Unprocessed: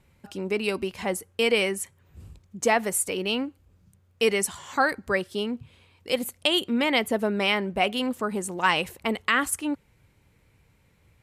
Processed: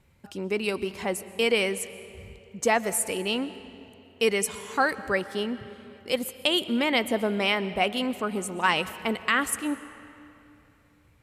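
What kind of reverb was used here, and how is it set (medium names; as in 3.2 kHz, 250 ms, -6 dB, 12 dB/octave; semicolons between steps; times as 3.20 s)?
algorithmic reverb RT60 2.9 s, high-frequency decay 0.75×, pre-delay 85 ms, DRR 14.5 dB; trim -1 dB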